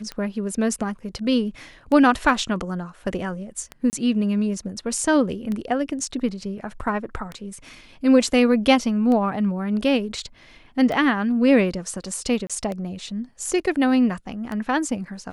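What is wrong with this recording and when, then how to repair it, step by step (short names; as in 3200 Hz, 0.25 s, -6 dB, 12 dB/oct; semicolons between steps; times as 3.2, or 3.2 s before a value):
tick 33 1/3 rpm -17 dBFS
3.9–3.93 gap 29 ms
12.47–12.5 gap 26 ms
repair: de-click; interpolate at 3.9, 29 ms; interpolate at 12.47, 26 ms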